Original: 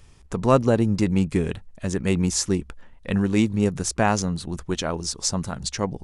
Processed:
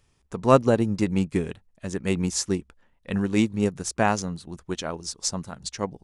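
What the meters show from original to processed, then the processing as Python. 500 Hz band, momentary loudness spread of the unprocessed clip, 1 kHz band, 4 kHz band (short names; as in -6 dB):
-0.5 dB, 9 LU, 0.0 dB, -3.5 dB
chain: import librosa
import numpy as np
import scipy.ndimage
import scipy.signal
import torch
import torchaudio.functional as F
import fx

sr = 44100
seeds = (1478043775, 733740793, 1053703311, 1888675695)

y = fx.low_shelf(x, sr, hz=83.0, db=-8.0)
y = fx.upward_expand(y, sr, threshold_db=-39.0, expansion=1.5)
y = y * librosa.db_to_amplitude(2.0)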